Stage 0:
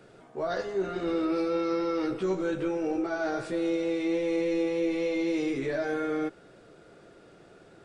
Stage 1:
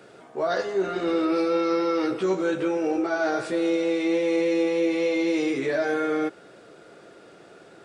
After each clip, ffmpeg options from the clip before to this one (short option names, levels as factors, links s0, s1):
-af "highpass=f=280:p=1,volume=2.11"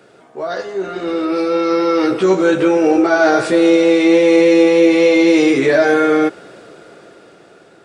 -af "dynaudnorm=f=410:g=9:m=3.98,volume=1.26"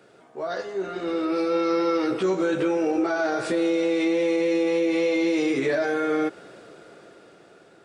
-af "alimiter=limit=0.376:level=0:latency=1:release=127,volume=0.447"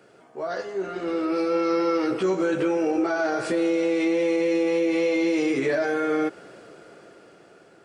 -af "bandreject=f=3700:w=11"